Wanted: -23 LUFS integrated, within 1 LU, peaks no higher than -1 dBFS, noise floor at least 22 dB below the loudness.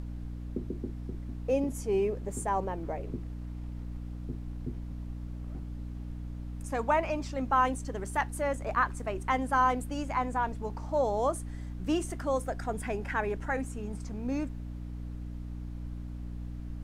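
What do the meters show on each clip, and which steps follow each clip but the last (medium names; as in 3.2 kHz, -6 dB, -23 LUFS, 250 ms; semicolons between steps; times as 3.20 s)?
hum 60 Hz; highest harmonic 300 Hz; hum level -36 dBFS; noise floor -40 dBFS; noise floor target -56 dBFS; loudness -33.5 LUFS; peak level -14.0 dBFS; loudness target -23.0 LUFS
-> hum notches 60/120/180/240/300 Hz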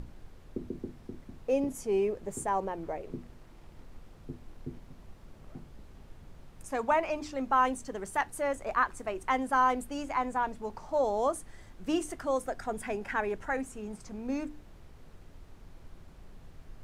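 hum not found; noise floor -53 dBFS; noise floor target -54 dBFS
-> noise print and reduce 6 dB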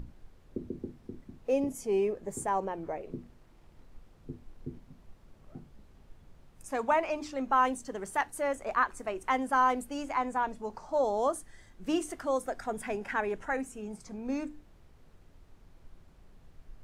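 noise floor -59 dBFS; loudness -32.0 LUFS; peak level -14.5 dBFS; loudness target -23.0 LUFS
-> trim +9 dB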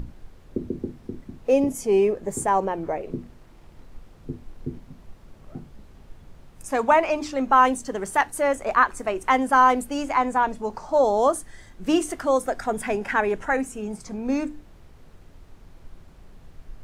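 loudness -23.0 LUFS; peak level -5.5 dBFS; noise floor -50 dBFS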